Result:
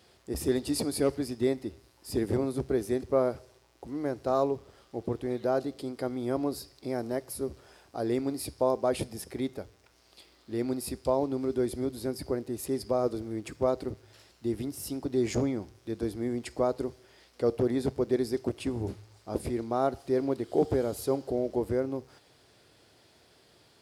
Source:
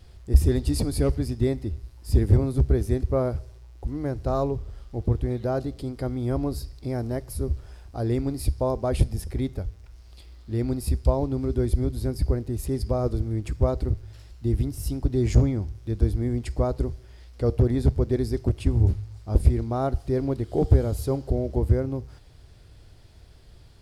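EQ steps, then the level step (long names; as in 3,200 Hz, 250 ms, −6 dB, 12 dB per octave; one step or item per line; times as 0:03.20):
high-pass filter 270 Hz 12 dB per octave
0.0 dB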